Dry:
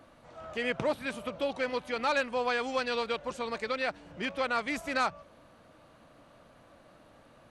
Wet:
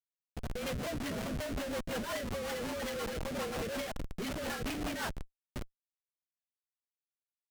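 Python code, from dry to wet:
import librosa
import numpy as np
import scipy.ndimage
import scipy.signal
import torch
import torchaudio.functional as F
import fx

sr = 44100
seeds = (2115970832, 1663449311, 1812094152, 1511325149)

p1 = fx.partial_stretch(x, sr, pct=110)
p2 = fx.transient(p1, sr, attack_db=7, sustain_db=2)
p3 = fx.hum_notches(p2, sr, base_hz=50, count=6)
p4 = p3 + fx.echo_feedback(p3, sr, ms=595, feedback_pct=44, wet_db=-19, dry=0)
p5 = fx.rider(p4, sr, range_db=10, speed_s=0.5)
p6 = fx.schmitt(p5, sr, flips_db=-39.5)
y = fx.rotary(p6, sr, hz=5.5)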